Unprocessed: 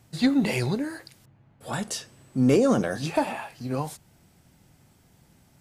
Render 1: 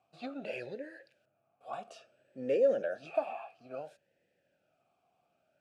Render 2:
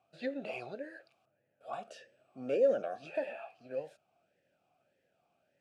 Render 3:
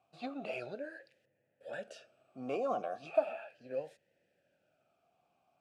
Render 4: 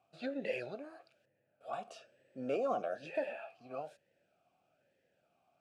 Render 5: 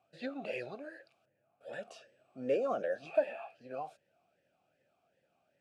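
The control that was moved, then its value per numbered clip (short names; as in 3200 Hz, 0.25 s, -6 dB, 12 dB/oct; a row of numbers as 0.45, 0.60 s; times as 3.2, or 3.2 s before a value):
vowel sweep, rate: 0.59, 1.7, 0.37, 1.1, 2.6 Hz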